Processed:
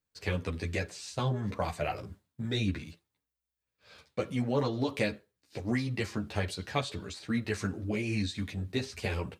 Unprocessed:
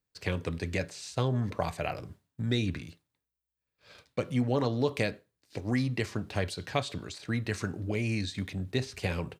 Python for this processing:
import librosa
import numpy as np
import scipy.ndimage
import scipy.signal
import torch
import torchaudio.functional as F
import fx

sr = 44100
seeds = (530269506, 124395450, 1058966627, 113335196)

y = fx.ensemble(x, sr)
y = y * 10.0 ** (2.5 / 20.0)